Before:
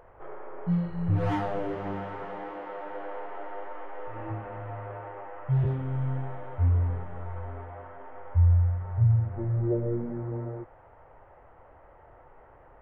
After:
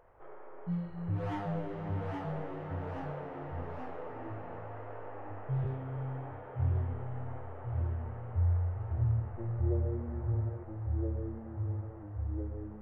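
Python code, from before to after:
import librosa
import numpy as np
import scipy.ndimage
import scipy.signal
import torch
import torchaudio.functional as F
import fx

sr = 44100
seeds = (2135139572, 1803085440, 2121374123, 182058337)

y = fx.echo_pitch(x, sr, ms=742, semitones=-1, count=3, db_per_echo=-3.0)
y = y * librosa.db_to_amplitude(-8.5)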